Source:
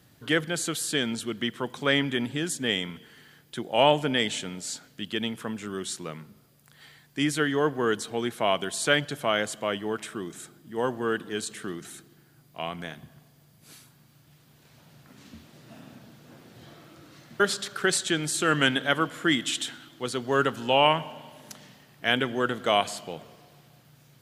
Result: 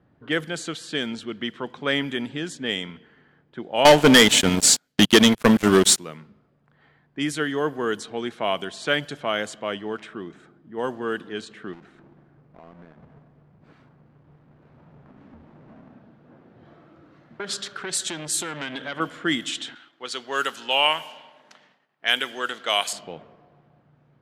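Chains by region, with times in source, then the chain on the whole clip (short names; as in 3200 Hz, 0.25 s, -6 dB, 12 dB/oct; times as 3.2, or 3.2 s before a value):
3.85–5.98 transient shaper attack +8 dB, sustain -8 dB + sample leveller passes 5
11.73–15.92 half-waves squared off + compressor 4:1, threshold -45 dBFS
16.65–19 compressor, threshold -24 dBFS + high shelf 4900 Hz +8 dB + core saturation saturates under 2200 Hz
19.75–22.93 expander -49 dBFS + HPF 810 Hz 6 dB/oct + high shelf 2600 Hz +10 dB
whole clip: low-pass opened by the level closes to 1200 Hz, open at -21 dBFS; bell 120 Hz -5 dB 0.51 oct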